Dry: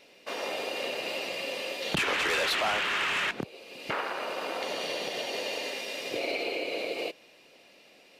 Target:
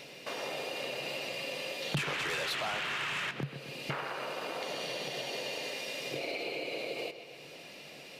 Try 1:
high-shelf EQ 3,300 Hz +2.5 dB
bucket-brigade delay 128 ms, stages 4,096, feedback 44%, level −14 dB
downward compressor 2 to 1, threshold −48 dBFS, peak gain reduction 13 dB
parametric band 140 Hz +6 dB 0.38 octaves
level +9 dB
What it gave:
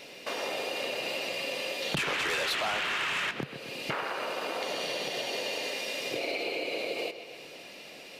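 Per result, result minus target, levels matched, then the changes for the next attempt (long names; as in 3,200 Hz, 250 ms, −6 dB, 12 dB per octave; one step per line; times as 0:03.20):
125 Hz band −7.5 dB; downward compressor: peak gain reduction −4 dB
change: parametric band 140 Hz +16.5 dB 0.38 octaves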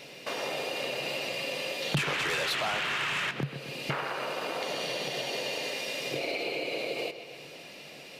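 downward compressor: peak gain reduction −4 dB
change: downward compressor 2 to 1, threshold −56.5 dBFS, peak gain reduction 17 dB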